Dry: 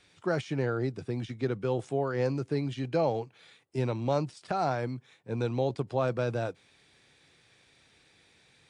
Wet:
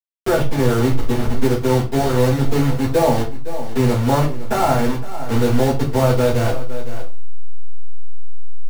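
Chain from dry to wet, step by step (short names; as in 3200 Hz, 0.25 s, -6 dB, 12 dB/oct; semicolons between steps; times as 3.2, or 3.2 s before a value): level-crossing sampler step -30 dBFS; echo 0.511 s -17 dB; reverb RT60 0.35 s, pre-delay 4 ms, DRR -11 dB; three-band squash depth 40%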